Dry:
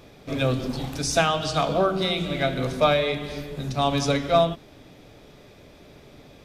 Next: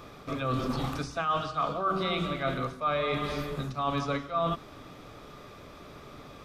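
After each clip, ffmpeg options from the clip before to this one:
ffmpeg -i in.wav -filter_complex "[0:a]acrossover=split=3800[link_01][link_02];[link_02]acompressor=threshold=-43dB:ratio=4:attack=1:release=60[link_03];[link_01][link_03]amix=inputs=2:normalize=0,equalizer=frequency=1200:width=3.5:gain=14.5,areverse,acompressor=threshold=-26dB:ratio=10,areverse" out.wav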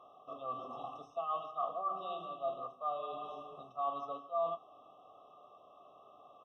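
ffmpeg -i in.wav -filter_complex "[0:a]asplit=3[link_01][link_02][link_03];[link_01]bandpass=frequency=730:width_type=q:width=8,volume=0dB[link_04];[link_02]bandpass=frequency=1090:width_type=q:width=8,volume=-6dB[link_05];[link_03]bandpass=frequency=2440:width_type=q:width=8,volume=-9dB[link_06];[link_04][link_05][link_06]amix=inputs=3:normalize=0,asplit=2[link_07][link_08];[link_08]adelay=25,volume=-12dB[link_09];[link_07][link_09]amix=inputs=2:normalize=0,afftfilt=real='re*eq(mod(floor(b*sr/1024/1300),2),0)':imag='im*eq(mod(floor(b*sr/1024/1300),2),0)':win_size=1024:overlap=0.75" out.wav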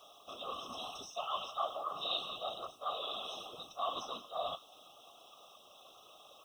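ffmpeg -i in.wav -filter_complex "[0:a]flanger=delay=5:depth=7.4:regen=60:speed=0.8:shape=sinusoidal,acrossover=split=210[link_01][link_02];[link_02]aexciter=amount=9.8:drive=8.4:freq=2900[link_03];[link_01][link_03]amix=inputs=2:normalize=0,afftfilt=real='hypot(re,im)*cos(2*PI*random(0))':imag='hypot(re,im)*sin(2*PI*random(1))':win_size=512:overlap=0.75,volume=8dB" out.wav

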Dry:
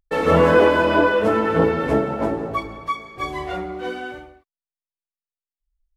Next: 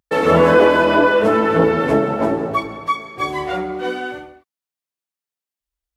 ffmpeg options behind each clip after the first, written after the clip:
ffmpeg -i in.wav -filter_complex "[0:a]highpass=110,asplit=2[link_01][link_02];[link_02]alimiter=limit=-14dB:level=0:latency=1,volume=-2dB[link_03];[link_01][link_03]amix=inputs=2:normalize=0" out.wav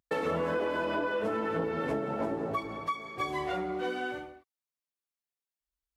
ffmpeg -i in.wav -af "acompressor=threshold=-22dB:ratio=5,volume=-7dB" out.wav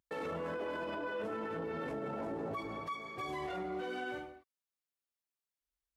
ffmpeg -i in.wav -af "alimiter=level_in=5dB:limit=-24dB:level=0:latency=1:release=11,volume=-5dB,volume=-3dB" out.wav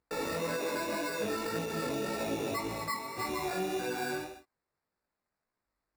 ffmpeg -i in.wav -af "acrusher=samples=14:mix=1:aa=0.000001,flanger=delay=16.5:depth=4.7:speed=1.8,volume=8dB" out.wav

